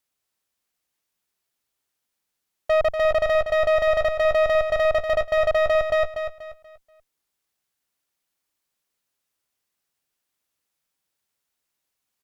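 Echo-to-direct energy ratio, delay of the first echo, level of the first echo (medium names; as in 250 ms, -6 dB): -7.5 dB, 241 ms, -8.0 dB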